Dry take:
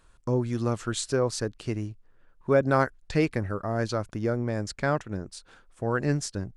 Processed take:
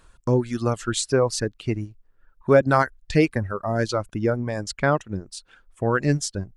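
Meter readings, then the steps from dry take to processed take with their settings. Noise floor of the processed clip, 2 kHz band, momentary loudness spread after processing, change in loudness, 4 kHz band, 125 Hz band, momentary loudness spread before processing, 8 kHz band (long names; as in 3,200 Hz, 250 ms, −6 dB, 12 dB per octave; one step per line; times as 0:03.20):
−62 dBFS, +5.5 dB, 12 LU, +4.5 dB, +5.5 dB, +4.0 dB, 10 LU, +5.5 dB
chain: reverb reduction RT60 1.4 s
level +6 dB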